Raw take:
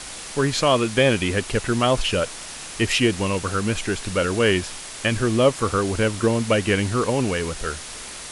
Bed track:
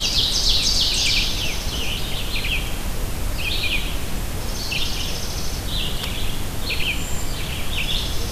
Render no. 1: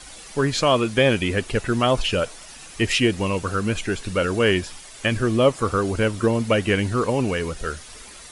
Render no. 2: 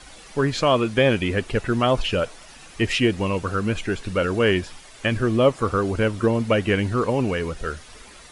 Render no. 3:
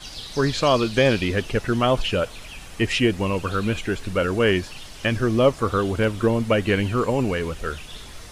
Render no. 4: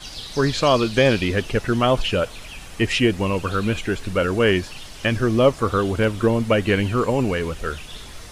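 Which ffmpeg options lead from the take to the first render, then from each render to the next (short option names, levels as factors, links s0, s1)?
-af "afftdn=nr=10:nf=-36"
-af "highshelf=f=5300:g=-9.5"
-filter_complex "[1:a]volume=0.133[s0];[0:a][s0]amix=inputs=2:normalize=0"
-af "volume=1.19"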